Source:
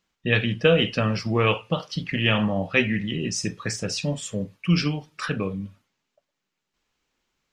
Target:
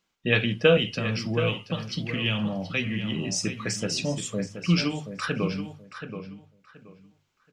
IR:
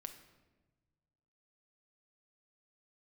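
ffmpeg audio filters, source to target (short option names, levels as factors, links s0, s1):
-filter_complex "[0:a]lowshelf=f=100:g=-6,bandreject=f=1800:w=16,asettb=1/sr,asplit=3[s0][s1][s2];[s0]atrim=end=0.774[s3];[s1]atrim=start=0.77:end=3.28,asetpts=PTS-STARTPTS,afade=t=in:d=0.004:c=qsin,afade=t=out:st=2.506:d=0.004:c=qsin,acrossover=split=210|3000[s4][s5][s6];[s5]acompressor=threshold=0.0224:ratio=5[s7];[s4][s7][s6]amix=inputs=3:normalize=0[s8];[s2]atrim=start=3.276[s9];[s3][s8]acrossfade=d=0.004:c1=hsin:c2=qsin[s10];[s10][s9]acrossfade=d=0.004:c1=qsin:c2=hsin,bandreject=f=50:t=h:w=6,bandreject=f=100:t=h:w=6,bandreject=f=150:t=h:w=6,asplit=2[s11][s12];[s12]adelay=727,lowpass=f=3600:p=1,volume=0.355,asplit=2[s13][s14];[s14]adelay=727,lowpass=f=3600:p=1,volume=0.23,asplit=2[s15][s16];[s16]adelay=727,lowpass=f=3600:p=1,volume=0.23[s17];[s11][s13][s15][s17]amix=inputs=4:normalize=0"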